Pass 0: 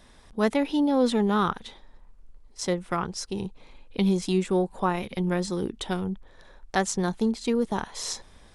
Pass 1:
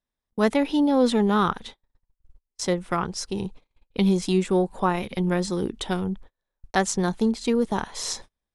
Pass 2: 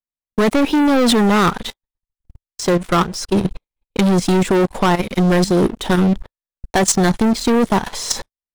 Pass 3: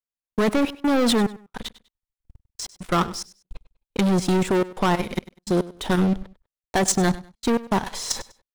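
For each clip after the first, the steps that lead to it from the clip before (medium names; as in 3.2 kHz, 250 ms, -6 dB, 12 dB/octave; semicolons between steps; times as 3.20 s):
gate -42 dBFS, range -37 dB; trim +2.5 dB
waveshaping leveller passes 5; level held to a coarse grid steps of 13 dB
trance gate "xxxxx.xxx..x.x" 107 bpm -60 dB; feedback delay 99 ms, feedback 26%, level -18 dB; trim -5.5 dB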